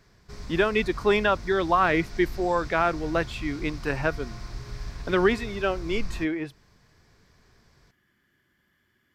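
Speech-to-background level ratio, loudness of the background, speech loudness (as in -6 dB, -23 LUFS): 14.5 dB, -40.0 LUFS, -25.5 LUFS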